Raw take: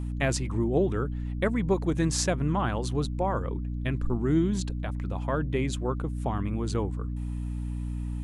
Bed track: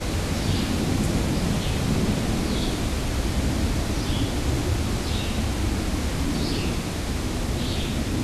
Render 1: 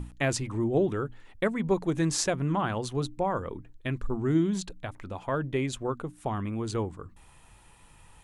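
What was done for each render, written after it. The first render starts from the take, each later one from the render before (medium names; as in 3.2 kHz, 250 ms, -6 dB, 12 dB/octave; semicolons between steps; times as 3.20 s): hum notches 60/120/180/240/300 Hz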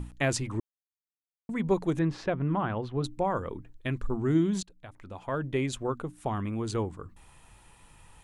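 0.60–1.49 s: mute; 1.99–3.04 s: distance through air 370 m; 4.63–5.58 s: fade in, from -19 dB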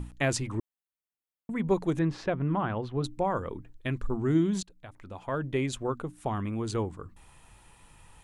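0.55–1.70 s: peaking EQ 5.4 kHz -11.5 dB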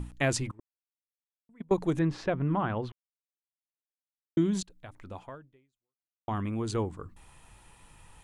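0.51–1.78 s: gate -26 dBFS, range -26 dB; 2.92–4.37 s: mute; 5.19–6.28 s: fade out exponential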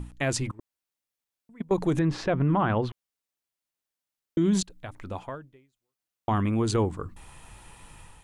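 level rider gain up to 7 dB; peak limiter -15.5 dBFS, peak gain reduction 7 dB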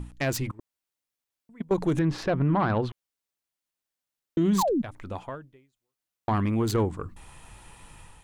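self-modulated delay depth 0.054 ms; 4.58–4.82 s: painted sound fall 200–1200 Hz -24 dBFS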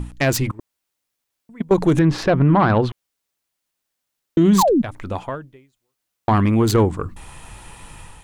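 trim +9 dB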